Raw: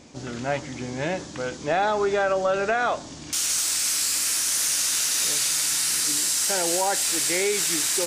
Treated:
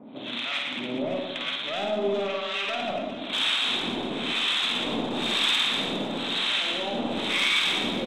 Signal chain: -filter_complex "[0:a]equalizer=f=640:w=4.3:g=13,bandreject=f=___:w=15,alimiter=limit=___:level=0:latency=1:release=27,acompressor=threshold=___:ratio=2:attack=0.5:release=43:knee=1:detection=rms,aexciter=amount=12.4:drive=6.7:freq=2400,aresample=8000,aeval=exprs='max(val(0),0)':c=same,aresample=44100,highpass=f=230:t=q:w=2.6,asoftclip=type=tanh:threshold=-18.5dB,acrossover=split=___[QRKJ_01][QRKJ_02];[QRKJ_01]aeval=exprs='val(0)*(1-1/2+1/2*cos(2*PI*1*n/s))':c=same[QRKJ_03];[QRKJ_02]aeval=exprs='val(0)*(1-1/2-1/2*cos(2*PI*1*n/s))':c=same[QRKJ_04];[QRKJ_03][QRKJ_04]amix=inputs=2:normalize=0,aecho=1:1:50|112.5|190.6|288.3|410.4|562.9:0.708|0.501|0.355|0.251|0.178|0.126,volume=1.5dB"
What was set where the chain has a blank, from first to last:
2900, -10.5dB, -25dB, 930